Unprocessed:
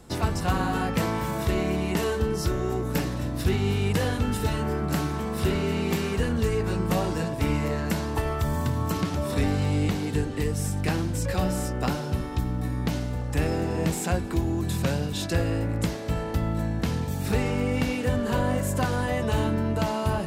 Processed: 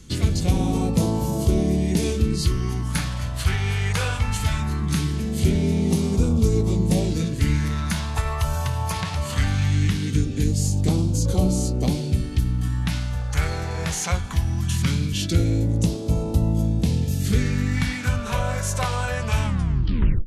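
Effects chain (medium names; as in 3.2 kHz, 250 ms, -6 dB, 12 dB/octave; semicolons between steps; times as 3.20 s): tape stop on the ending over 0.83 s; formant shift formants -3 st; phase shifter stages 2, 0.2 Hz, lowest notch 270–1700 Hz; trim +5.5 dB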